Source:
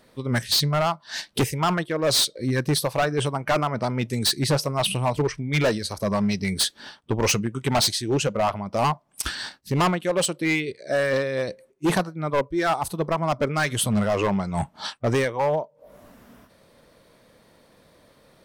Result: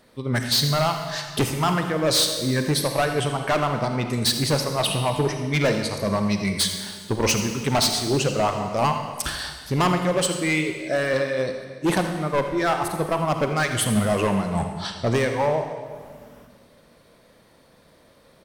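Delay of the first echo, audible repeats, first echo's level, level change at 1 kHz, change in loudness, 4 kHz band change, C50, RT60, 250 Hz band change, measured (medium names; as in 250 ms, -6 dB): 83 ms, 1, -14.0 dB, +1.0 dB, +1.0 dB, +1.0 dB, 6.0 dB, 1.6 s, +1.5 dB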